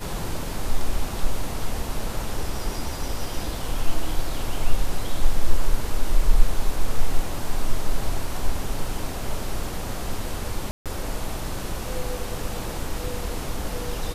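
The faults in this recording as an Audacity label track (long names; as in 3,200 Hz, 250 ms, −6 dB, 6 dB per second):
10.710000	10.860000	drop-out 147 ms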